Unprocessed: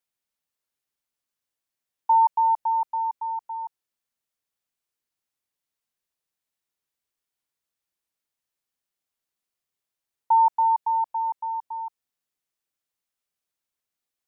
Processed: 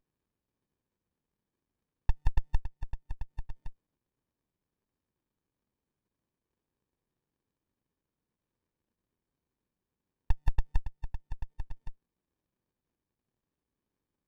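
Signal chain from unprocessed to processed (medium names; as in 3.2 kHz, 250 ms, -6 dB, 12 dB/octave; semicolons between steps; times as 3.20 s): level held to a coarse grid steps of 11 dB; sliding maximum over 65 samples; trim +6.5 dB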